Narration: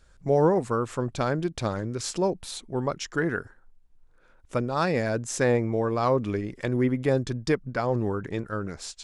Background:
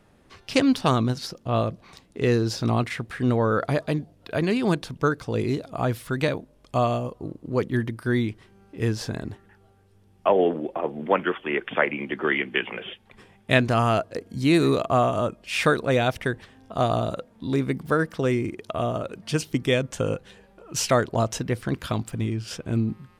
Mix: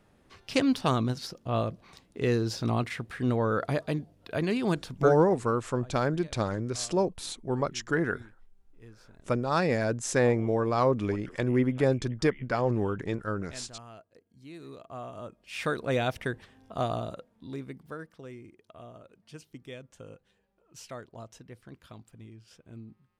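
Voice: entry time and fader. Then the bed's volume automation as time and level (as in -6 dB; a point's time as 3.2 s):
4.75 s, -1.0 dB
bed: 5.09 s -5 dB
5.31 s -27 dB
14.54 s -27 dB
15.93 s -6 dB
16.73 s -6 dB
18.27 s -21.5 dB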